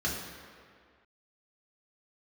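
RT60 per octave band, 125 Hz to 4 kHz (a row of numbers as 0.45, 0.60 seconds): 1.6, 1.9, 2.0, 2.1, 2.0, 1.5 seconds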